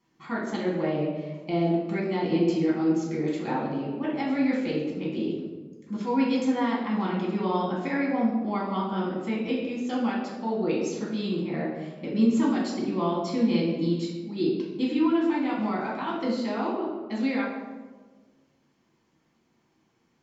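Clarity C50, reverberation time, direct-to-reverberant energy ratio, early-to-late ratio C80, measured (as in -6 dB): 2.0 dB, 1.4 s, -5.0 dB, 4.5 dB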